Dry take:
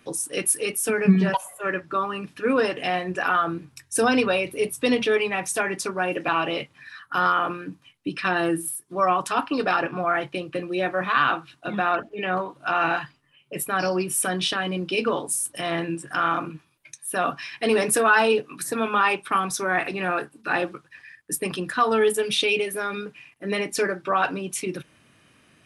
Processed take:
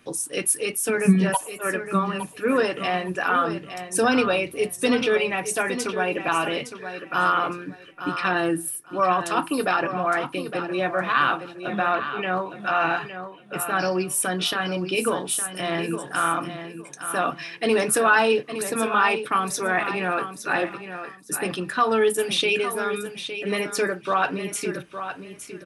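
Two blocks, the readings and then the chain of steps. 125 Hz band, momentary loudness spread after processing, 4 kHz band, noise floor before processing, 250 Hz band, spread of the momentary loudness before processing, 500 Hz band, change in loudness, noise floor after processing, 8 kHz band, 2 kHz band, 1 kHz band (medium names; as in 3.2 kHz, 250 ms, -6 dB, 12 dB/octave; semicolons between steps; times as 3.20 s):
+0.5 dB, 10 LU, +0.5 dB, -60 dBFS, +0.5 dB, 10 LU, +0.5 dB, +0.5 dB, -44 dBFS, +0.5 dB, +0.5 dB, +0.5 dB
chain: feedback delay 862 ms, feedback 22%, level -10 dB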